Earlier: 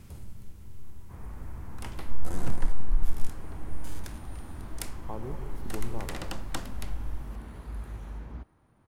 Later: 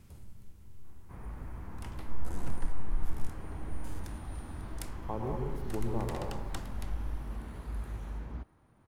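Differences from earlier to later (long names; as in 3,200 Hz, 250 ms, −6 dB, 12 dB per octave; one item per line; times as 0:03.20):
speech: send +9.0 dB
first sound −7.0 dB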